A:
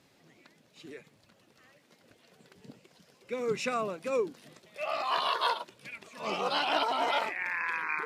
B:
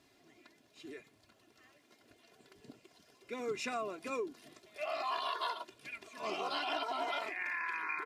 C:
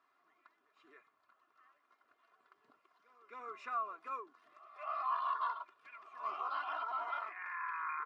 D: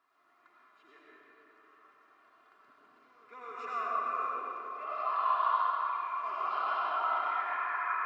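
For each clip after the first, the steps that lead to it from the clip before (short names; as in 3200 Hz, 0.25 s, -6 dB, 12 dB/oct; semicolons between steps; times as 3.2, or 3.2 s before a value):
comb 2.9 ms, depth 62%; compressor 4:1, threshold -30 dBFS, peak gain reduction 8 dB; gain -4 dB
band-pass 1200 Hz, Q 7.1; pre-echo 0.267 s -19.5 dB; gain +8.5 dB
digital reverb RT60 3.9 s, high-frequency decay 0.6×, pre-delay 55 ms, DRR -7 dB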